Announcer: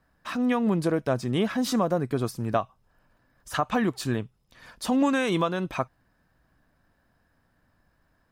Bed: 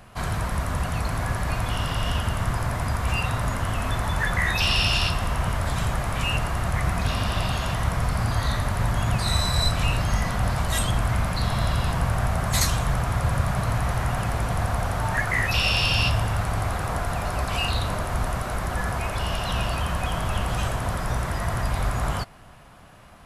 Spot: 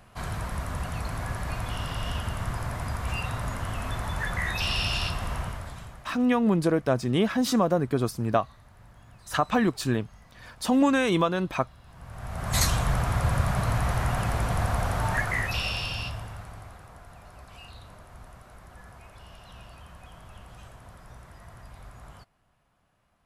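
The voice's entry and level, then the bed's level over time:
5.80 s, +1.5 dB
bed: 5.37 s -6 dB
6.31 s -29 dB
11.83 s -29 dB
12.59 s -1.5 dB
15.11 s -1.5 dB
16.90 s -21.5 dB

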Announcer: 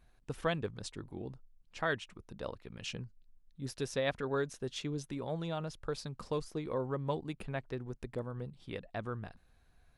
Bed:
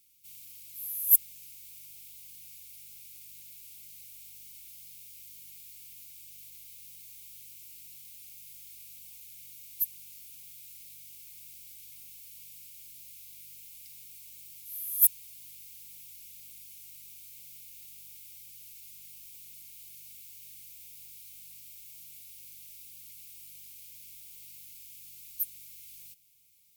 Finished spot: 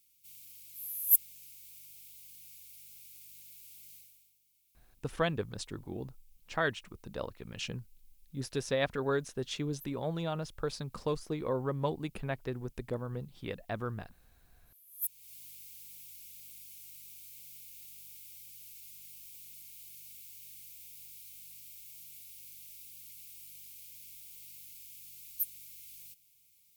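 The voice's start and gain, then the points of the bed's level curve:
4.75 s, +2.5 dB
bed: 3.95 s -3.5 dB
4.39 s -23 dB
14.85 s -23 dB
15.33 s -1.5 dB

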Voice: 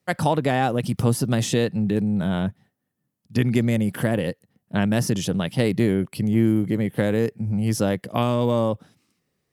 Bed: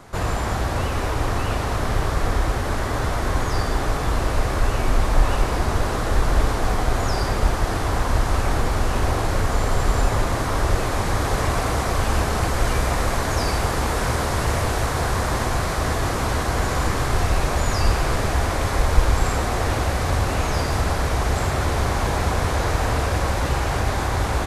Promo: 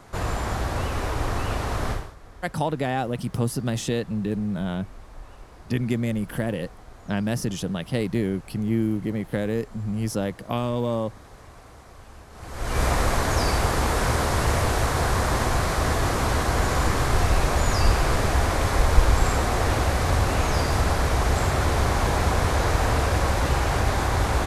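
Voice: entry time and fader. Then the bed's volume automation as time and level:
2.35 s, -4.5 dB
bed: 1.91 s -3.5 dB
2.16 s -25 dB
12.29 s -25 dB
12.82 s -0.5 dB

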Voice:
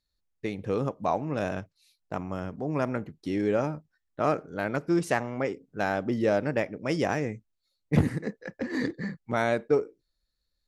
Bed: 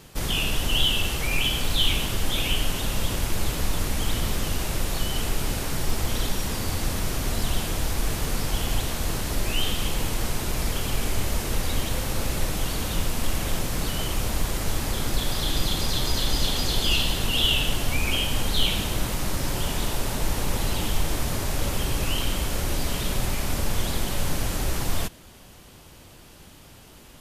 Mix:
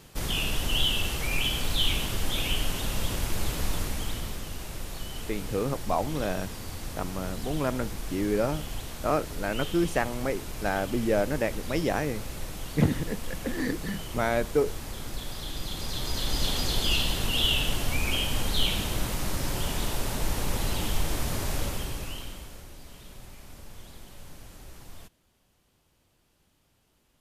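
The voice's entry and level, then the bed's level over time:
4.85 s, -0.5 dB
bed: 3.74 s -3.5 dB
4.45 s -10.5 dB
15.59 s -10.5 dB
16.48 s -3 dB
21.56 s -3 dB
22.73 s -20.5 dB

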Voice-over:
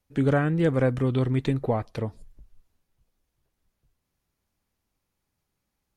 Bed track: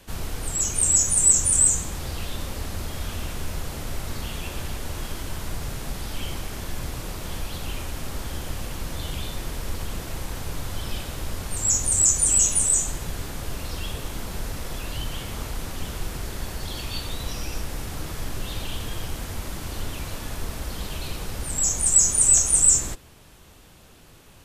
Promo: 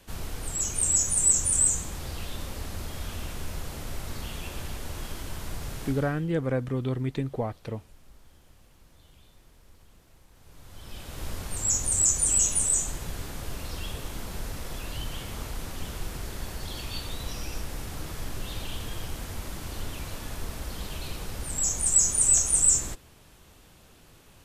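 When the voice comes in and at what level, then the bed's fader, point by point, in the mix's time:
5.70 s, -5.0 dB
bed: 5.86 s -4.5 dB
6.32 s -25.5 dB
10.31 s -25.5 dB
11.25 s -4 dB

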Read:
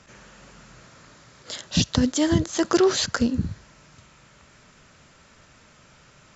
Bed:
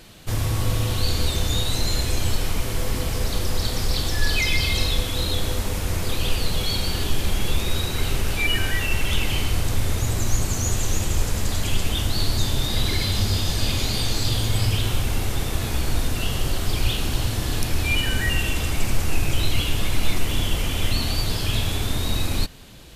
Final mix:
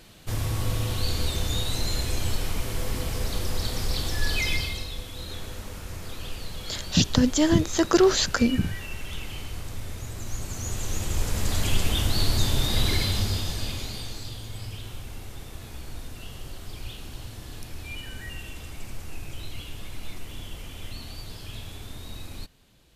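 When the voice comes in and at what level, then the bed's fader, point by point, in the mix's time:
5.20 s, +0.5 dB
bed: 4.53 s -4.5 dB
4.85 s -13 dB
10.14 s -13 dB
11.60 s -1 dB
12.94 s -1 dB
14.38 s -15.5 dB

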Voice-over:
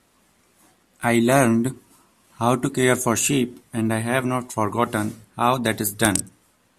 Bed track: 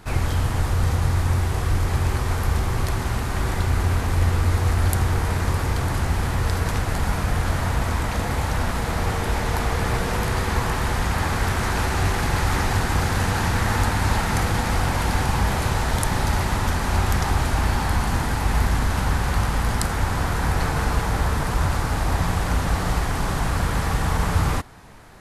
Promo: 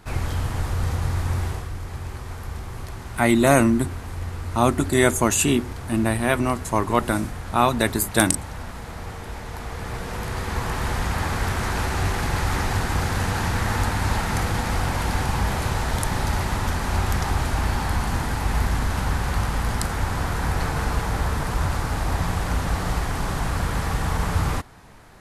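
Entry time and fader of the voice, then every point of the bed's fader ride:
2.15 s, +0.5 dB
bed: 1.49 s -3.5 dB
1.70 s -11 dB
9.50 s -11 dB
10.87 s -2 dB

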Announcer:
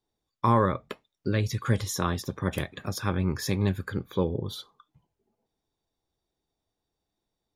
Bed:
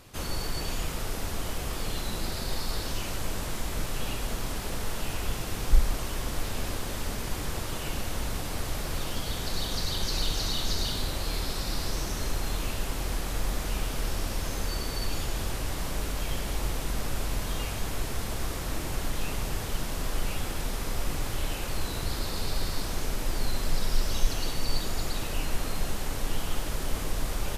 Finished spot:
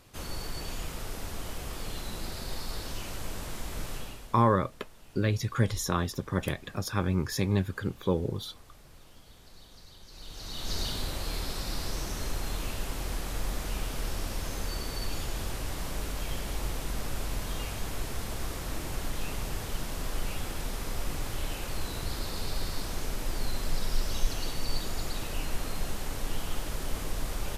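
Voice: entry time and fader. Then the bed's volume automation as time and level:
3.90 s, -1.0 dB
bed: 3.94 s -5 dB
4.48 s -22 dB
10.07 s -22 dB
10.76 s -3 dB

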